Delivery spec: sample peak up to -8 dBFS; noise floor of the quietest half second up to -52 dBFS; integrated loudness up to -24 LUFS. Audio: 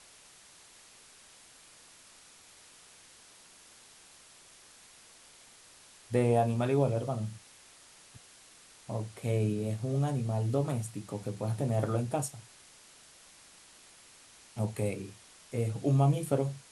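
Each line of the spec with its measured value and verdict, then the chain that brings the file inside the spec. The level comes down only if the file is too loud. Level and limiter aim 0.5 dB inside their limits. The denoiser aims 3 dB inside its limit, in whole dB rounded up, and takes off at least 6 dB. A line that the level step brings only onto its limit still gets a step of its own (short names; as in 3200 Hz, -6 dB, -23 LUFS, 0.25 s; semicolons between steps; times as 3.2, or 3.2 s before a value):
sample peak -14.0 dBFS: OK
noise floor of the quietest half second -57 dBFS: OK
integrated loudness -31.5 LUFS: OK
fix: none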